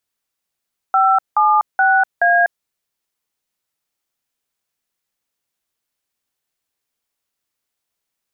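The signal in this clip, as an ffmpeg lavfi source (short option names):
-f lavfi -i "aevalsrc='0.224*clip(min(mod(t,0.425),0.246-mod(t,0.425))/0.002,0,1)*(eq(floor(t/0.425),0)*(sin(2*PI*770*mod(t,0.425))+sin(2*PI*1336*mod(t,0.425)))+eq(floor(t/0.425),1)*(sin(2*PI*852*mod(t,0.425))+sin(2*PI*1209*mod(t,0.425)))+eq(floor(t/0.425),2)*(sin(2*PI*770*mod(t,0.425))+sin(2*PI*1477*mod(t,0.425)))+eq(floor(t/0.425),3)*(sin(2*PI*697*mod(t,0.425))+sin(2*PI*1633*mod(t,0.425))))':d=1.7:s=44100"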